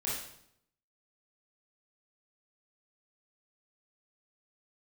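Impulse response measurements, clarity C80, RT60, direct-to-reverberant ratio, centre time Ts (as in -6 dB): 5.5 dB, 0.70 s, -7.5 dB, 57 ms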